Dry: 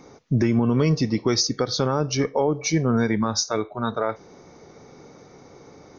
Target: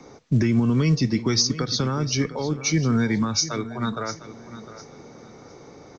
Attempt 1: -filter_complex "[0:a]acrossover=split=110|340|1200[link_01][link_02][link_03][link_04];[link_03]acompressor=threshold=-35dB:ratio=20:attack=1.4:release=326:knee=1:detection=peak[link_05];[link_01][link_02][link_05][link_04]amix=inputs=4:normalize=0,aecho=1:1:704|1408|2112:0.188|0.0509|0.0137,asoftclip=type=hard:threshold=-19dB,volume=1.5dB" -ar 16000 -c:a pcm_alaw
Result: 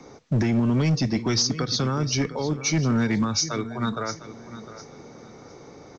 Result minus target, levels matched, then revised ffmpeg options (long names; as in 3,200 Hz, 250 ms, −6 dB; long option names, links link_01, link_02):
hard clipping: distortion +28 dB
-filter_complex "[0:a]acrossover=split=110|340|1200[link_01][link_02][link_03][link_04];[link_03]acompressor=threshold=-35dB:ratio=20:attack=1.4:release=326:knee=1:detection=peak[link_05];[link_01][link_02][link_05][link_04]amix=inputs=4:normalize=0,aecho=1:1:704|1408|2112:0.188|0.0509|0.0137,asoftclip=type=hard:threshold=-11.5dB,volume=1.5dB" -ar 16000 -c:a pcm_alaw